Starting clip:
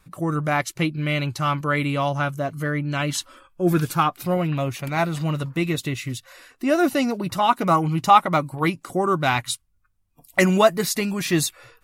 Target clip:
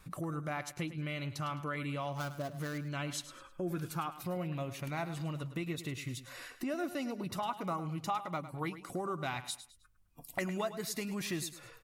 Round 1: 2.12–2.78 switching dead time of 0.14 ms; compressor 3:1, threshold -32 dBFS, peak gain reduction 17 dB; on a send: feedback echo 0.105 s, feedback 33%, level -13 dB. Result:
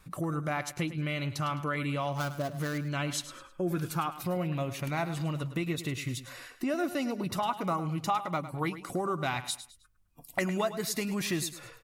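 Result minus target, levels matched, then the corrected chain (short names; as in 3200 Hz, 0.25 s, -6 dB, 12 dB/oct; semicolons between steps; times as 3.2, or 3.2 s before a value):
compressor: peak gain reduction -5.5 dB
2.12–2.78 switching dead time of 0.14 ms; compressor 3:1, threshold -40.5 dBFS, peak gain reduction 23 dB; on a send: feedback echo 0.105 s, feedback 33%, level -13 dB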